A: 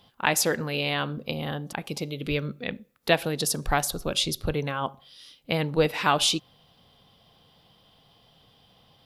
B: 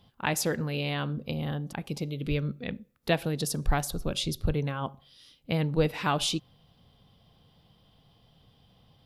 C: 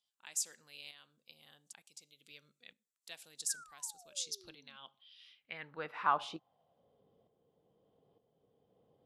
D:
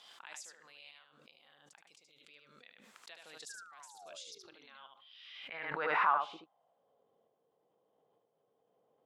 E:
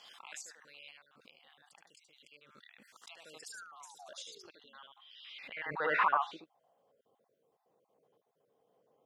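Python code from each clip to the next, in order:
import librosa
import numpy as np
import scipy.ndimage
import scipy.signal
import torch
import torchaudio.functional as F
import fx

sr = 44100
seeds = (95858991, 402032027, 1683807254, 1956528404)

y1 = fx.low_shelf(x, sr, hz=250.0, db=11.5)
y1 = y1 * 10.0 ** (-6.5 / 20.0)
y2 = fx.spec_paint(y1, sr, seeds[0], shape='fall', start_s=3.49, length_s=1.28, low_hz=210.0, high_hz=1700.0, level_db=-31.0)
y2 = fx.filter_sweep_bandpass(y2, sr, from_hz=7600.0, to_hz=440.0, start_s=4.1, end_s=7.05, q=3.0)
y2 = fx.tremolo_shape(y2, sr, shape='saw_up', hz=1.1, depth_pct=60)
y2 = y2 * 10.0 ** (4.0 / 20.0)
y3 = fx.bandpass_q(y2, sr, hz=1100.0, q=0.74)
y3 = y3 + 10.0 ** (-5.0 / 20.0) * np.pad(y3, (int(75 * sr / 1000.0), 0))[:len(y3)]
y3 = fx.pre_swell(y3, sr, db_per_s=34.0)
y4 = fx.spec_dropout(y3, sr, seeds[1], share_pct=30)
y4 = y4 * 10.0 ** (2.5 / 20.0)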